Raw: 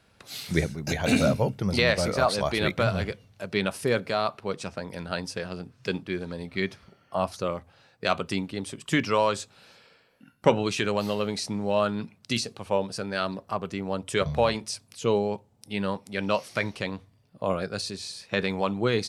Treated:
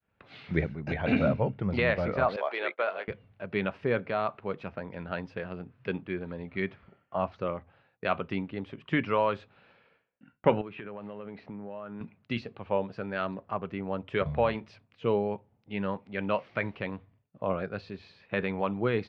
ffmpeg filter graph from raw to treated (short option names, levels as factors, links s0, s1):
-filter_complex "[0:a]asettb=1/sr,asplit=3[s0][s1][s2];[s0]atrim=end=2.364[s3];[s1]atrim=start=2.36:end=3.08,asetpts=PTS-STARTPTS,afade=t=in:d=0.004:c=qsin,afade=t=out:st=0.716:d=0.004:c=qsin,highpass=f=430:w=0.5412,highpass=f=430:w=1.3066,agate=range=0.0224:threshold=0.02:ratio=3:release=100:detection=peak[s4];[s2]atrim=start=3.076[s5];[s3][s4]acrossfade=d=0.004:c1=hsin:c2=qsin[s6];[s6][s5]acrossfade=d=0.004:c1=qsin:c2=hsin,asettb=1/sr,asplit=3[s7][s8][s9];[s7]atrim=end=10.614[s10];[s8]atrim=start=10.61:end=12.01,asetpts=PTS-STARTPTS,afade=t=in:d=0.004:c=qsin,afade=t=out:st=1.396:d=0.004:c=qsin,highpass=110,lowpass=2300,acompressor=threshold=0.02:ratio=6:attack=3.2:release=140:knee=1:detection=peak[s11];[s9]atrim=start=12.006[s12];[s10][s11]acrossfade=d=0.004:c1=hsin:c2=qsin[s13];[s13][s12]acrossfade=d=0.004:c1=qsin:c2=hsin,lowpass=f=2700:w=0.5412,lowpass=f=2700:w=1.3066,agate=range=0.0224:threshold=0.002:ratio=3:detection=peak,volume=0.708"